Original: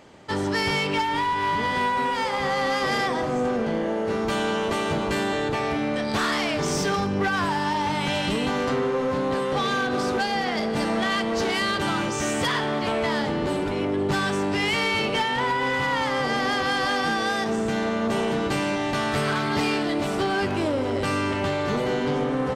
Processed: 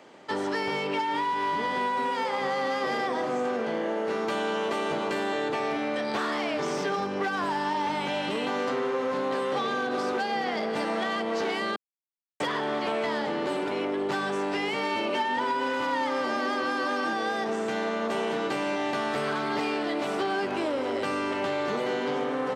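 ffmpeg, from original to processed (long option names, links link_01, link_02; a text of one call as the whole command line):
ffmpeg -i in.wav -filter_complex "[0:a]asettb=1/sr,asplit=3[link_01][link_02][link_03];[link_01]atrim=end=14.834[link_04];[link_02]atrim=start=14.83:end=17.13,asetpts=PTS-STARTPTS,afade=type=in:duration=0.004:curve=qsin,afade=type=out:start_time=2.296:duration=0.004:curve=qsin,aecho=1:1:3.3:0.65,atrim=end_sample=101430[link_05];[link_03]atrim=start=17.126[link_06];[link_04][link_05]acrossfade=duration=0.004:curve1=hsin:curve2=qsin[link_07];[link_07][link_06]acrossfade=duration=0.004:curve1=qsin:curve2=hsin,asplit=3[link_08][link_09][link_10];[link_08]atrim=end=11.76,asetpts=PTS-STARTPTS,afade=type=out:start_time=11.756:duration=0.004:curve=hsin[link_11];[link_09]atrim=start=11.76:end=12.4,asetpts=PTS-STARTPTS,volume=0[link_12];[link_10]atrim=start=12.4,asetpts=PTS-STARTPTS,afade=type=in:duration=0.004:curve=hsin[link_13];[link_11][link_12][link_13]concat=n=3:v=0:a=1,highpass=260,highshelf=frequency=6000:gain=-7,acrossover=split=350|1000|3800[link_14][link_15][link_16][link_17];[link_14]acompressor=threshold=-35dB:ratio=4[link_18];[link_15]acompressor=threshold=-29dB:ratio=4[link_19];[link_16]acompressor=threshold=-34dB:ratio=4[link_20];[link_17]acompressor=threshold=-46dB:ratio=4[link_21];[link_18][link_19][link_20][link_21]amix=inputs=4:normalize=0" out.wav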